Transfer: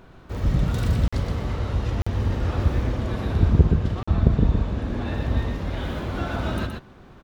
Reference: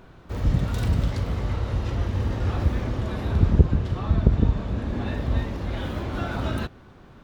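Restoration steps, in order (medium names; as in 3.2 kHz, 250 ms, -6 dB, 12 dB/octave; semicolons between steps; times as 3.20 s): interpolate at 1.08/2.02/4.03 s, 45 ms; inverse comb 121 ms -4.5 dB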